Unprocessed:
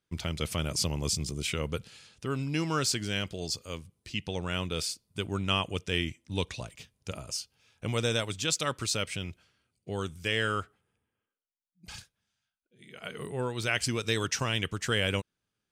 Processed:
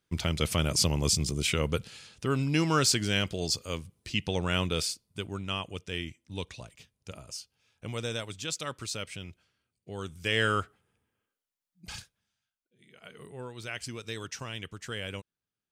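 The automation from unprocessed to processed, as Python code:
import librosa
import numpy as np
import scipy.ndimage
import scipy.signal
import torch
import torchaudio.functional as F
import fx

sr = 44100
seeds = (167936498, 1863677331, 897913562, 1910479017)

y = fx.gain(x, sr, db=fx.line((4.67, 4.0), (5.44, -5.5), (9.93, -5.5), (10.42, 3.0), (11.92, 3.0), (13.01, -9.0)))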